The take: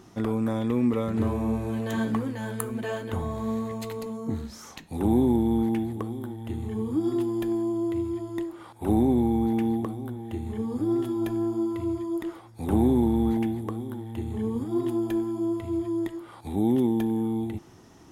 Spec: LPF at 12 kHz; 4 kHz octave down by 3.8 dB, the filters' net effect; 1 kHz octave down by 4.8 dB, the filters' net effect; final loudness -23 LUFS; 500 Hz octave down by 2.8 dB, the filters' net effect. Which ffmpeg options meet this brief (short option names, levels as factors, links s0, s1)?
-af "lowpass=12000,equalizer=f=500:t=o:g=-4,equalizer=f=1000:t=o:g=-4.5,equalizer=f=4000:t=o:g=-4.5,volume=2"